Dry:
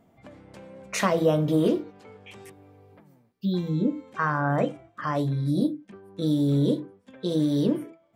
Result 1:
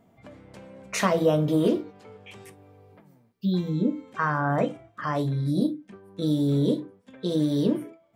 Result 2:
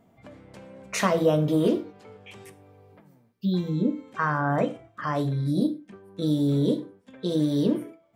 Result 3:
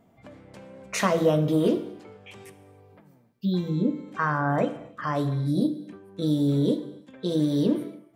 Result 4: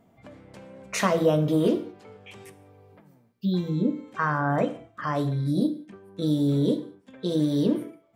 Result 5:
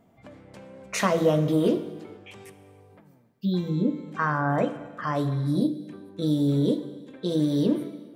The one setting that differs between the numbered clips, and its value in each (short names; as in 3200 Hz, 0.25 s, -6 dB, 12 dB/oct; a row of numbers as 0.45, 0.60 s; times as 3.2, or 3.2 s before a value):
non-linear reverb, gate: 80, 140, 340, 210, 520 ms